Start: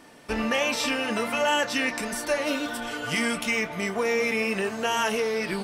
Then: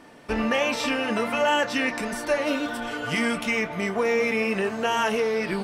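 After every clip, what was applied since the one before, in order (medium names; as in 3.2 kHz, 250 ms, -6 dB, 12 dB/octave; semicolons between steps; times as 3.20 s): treble shelf 3.8 kHz -8.5 dB; trim +2.5 dB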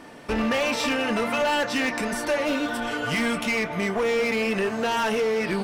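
in parallel at -3 dB: compression, threshold -33 dBFS, peak gain reduction 14 dB; on the sum: hard clipper -19.5 dBFS, distortion -13 dB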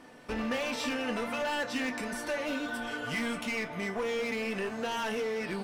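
feedback comb 250 Hz, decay 0.28 s, harmonics all, mix 70%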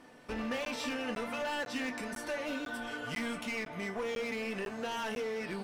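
crackling interface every 0.50 s, samples 512, zero, from 0.65 s; trim -3.5 dB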